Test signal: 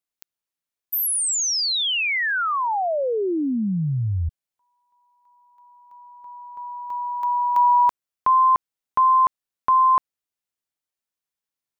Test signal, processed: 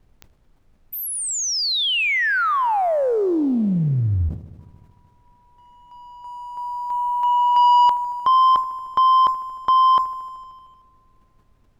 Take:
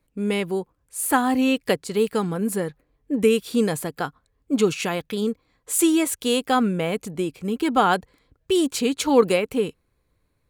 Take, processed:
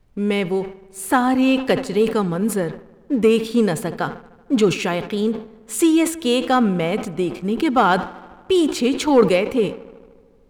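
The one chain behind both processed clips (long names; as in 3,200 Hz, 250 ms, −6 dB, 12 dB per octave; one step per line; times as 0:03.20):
high-shelf EQ 7,500 Hz −12 dB
feedback echo with a low-pass in the loop 76 ms, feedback 81%, low-pass 3,900 Hz, level −21 dB
leveller curve on the samples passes 1
background noise brown −57 dBFS
level that may fall only so fast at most 130 dB per second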